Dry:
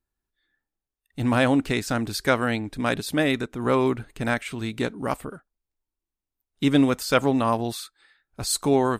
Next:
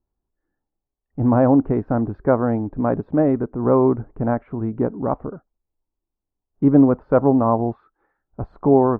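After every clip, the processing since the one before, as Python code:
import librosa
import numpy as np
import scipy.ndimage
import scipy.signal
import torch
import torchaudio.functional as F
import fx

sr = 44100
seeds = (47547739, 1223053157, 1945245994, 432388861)

y = scipy.signal.sosfilt(scipy.signal.butter(4, 1000.0, 'lowpass', fs=sr, output='sos'), x)
y = F.gain(torch.from_numpy(y), 6.0).numpy()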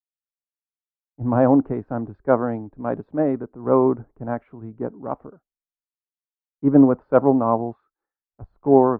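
y = fx.low_shelf(x, sr, hz=120.0, db=-9.5)
y = fx.band_widen(y, sr, depth_pct=100)
y = F.gain(torch.from_numpy(y), -1.5).numpy()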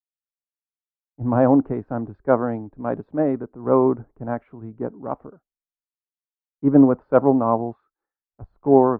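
y = x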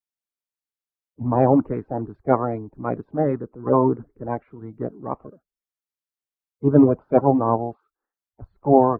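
y = fx.spec_quant(x, sr, step_db=30)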